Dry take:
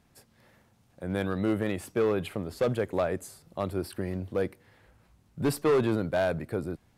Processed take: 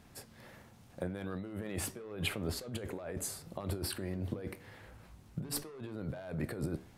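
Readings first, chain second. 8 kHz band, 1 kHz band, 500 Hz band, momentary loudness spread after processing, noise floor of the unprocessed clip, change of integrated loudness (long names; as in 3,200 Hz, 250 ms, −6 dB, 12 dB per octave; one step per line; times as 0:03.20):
+3.5 dB, −13.5 dB, −15.0 dB, 17 LU, −65 dBFS, −10.0 dB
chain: compressor whose output falls as the input rises −38 dBFS, ratio −1
flanger 0.83 Hz, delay 9.1 ms, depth 6.7 ms, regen −77%
level +2.5 dB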